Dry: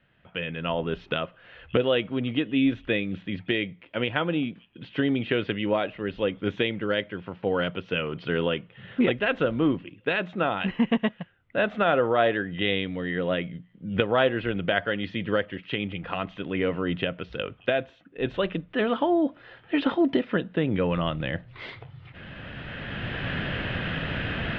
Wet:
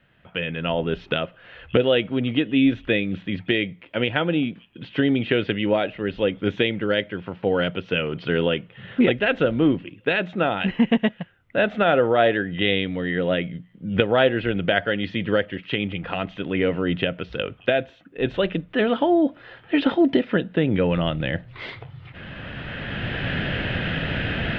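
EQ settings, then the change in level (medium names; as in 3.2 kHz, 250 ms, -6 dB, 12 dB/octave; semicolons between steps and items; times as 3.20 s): dynamic bell 1.1 kHz, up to -8 dB, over -48 dBFS, Q 3.7; +4.5 dB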